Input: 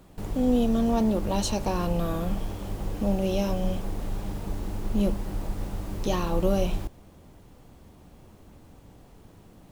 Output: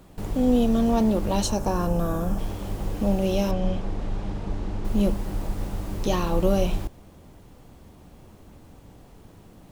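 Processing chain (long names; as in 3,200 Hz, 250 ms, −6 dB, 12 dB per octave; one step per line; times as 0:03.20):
0:01.47–0:02.39: gain on a spectral selection 1,800–5,100 Hz −8 dB
0:03.51–0:04.85: high-frequency loss of the air 97 metres
level +2.5 dB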